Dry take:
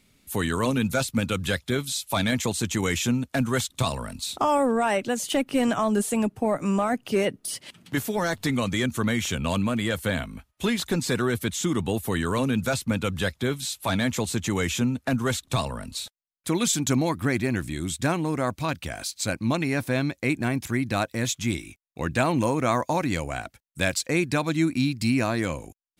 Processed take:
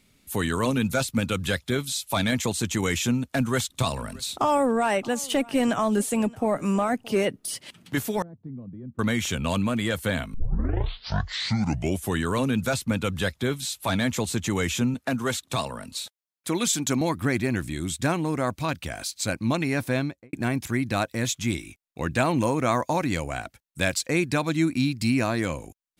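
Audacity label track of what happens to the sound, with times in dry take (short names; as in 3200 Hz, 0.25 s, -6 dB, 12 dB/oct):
3.280000	7.290000	echo 0.623 s -23 dB
8.220000	8.990000	ladder band-pass 170 Hz, resonance 25%
10.340000	10.340000	tape start 1.88 s
14.940000	17.010000	HPF 190 Hz 6 dB/oct
19.930000	20.330000	studio fade out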